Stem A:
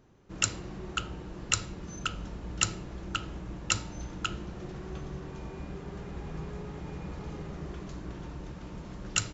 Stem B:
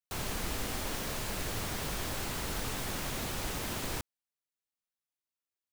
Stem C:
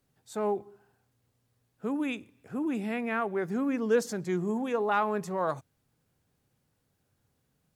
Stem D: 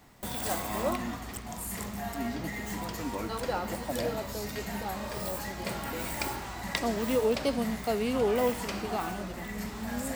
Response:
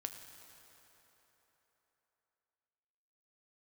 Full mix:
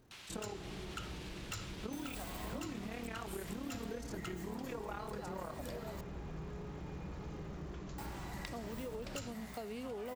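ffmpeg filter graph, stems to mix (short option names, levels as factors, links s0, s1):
-filter_complex "[0:a]asoftclip=type=tanh:threshold=0.0316,volume=0.596[s0];[1:a]alimiter=level_in=3.35:limit=0.0631:level=0:latency=1:release=168,volume=0.299,bandpass=f=3000:t=q:w=1.2:csg=0,volume=0.708,asplit=2[s1][s2];[s2]volume=0.473[s3];[2:a]acompressor=threshold=0.0141:ratio=4,tremolo=f=36:d=0.857,volume=0.944,asplit=2[s4][s5];[s5]volume=0.891[s6];[3:a]acompressor=threshold=0.0251:ratio=2.5,adelay=1700,volume=0.376,asplit=3[s7][s8][s9];[s7]atrim=end=6.01,asetpts=PTS-STARTPTS,afade=t=out:st=6.006:d=0.004:c=hsin[s10];[s8]atrim=start=6.01:end=7.98,asetpts=PTS-STARTPTS,volume=0[s11];[s9]atrim=start=7.98,asetpts=PTS-STARTPTS,afade=t=in:d=0.004:c=hsin[s12];[s10][s11][s12]concat=n=3:v=0:a=1[s13];[4:a]atrim=start_sample=2205[s14];[s3][s6]amix=inputs=2:normalize=0[s15];[s15][s14]afir=irnorm=-1:irlink=0[s16];[s0][s1][s4][s13][s16]amix=inputs=5:normalize=0,acompressor=threshold=0.0112:ratio=6"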